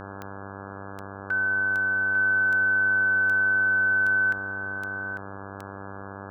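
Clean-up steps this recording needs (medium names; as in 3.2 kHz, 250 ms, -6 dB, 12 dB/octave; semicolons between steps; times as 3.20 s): de-click; de-hum 98.4 Hz, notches 17; noise reduction 30 dB, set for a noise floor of -39 dBFS; inverse comb 848 ms -8.5 dB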